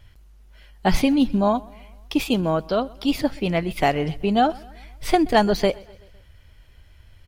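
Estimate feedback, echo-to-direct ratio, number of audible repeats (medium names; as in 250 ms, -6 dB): 55%, -22.5 dB, 3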